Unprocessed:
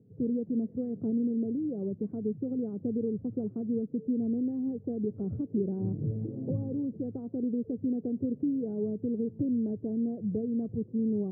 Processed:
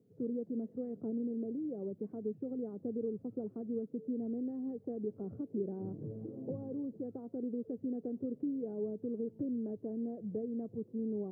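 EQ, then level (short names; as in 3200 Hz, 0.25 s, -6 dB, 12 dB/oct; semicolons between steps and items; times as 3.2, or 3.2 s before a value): HPF 630 Hz 6 dB/oct; +1.0 dB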